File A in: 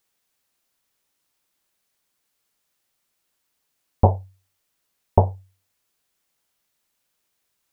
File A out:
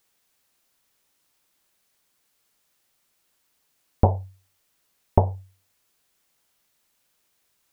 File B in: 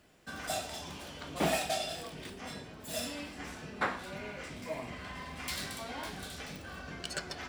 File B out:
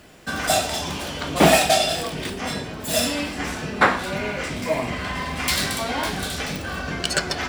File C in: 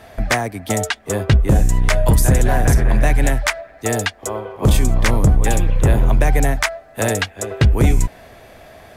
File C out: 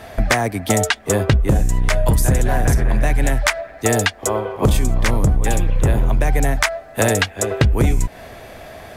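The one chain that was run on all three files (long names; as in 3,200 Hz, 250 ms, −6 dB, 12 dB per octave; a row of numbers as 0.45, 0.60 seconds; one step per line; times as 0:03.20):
downward compressor, threshold −17 dBFS
normalise the peak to −1.5 dBFS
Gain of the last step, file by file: +4.0, +15.5, +5.0 decibels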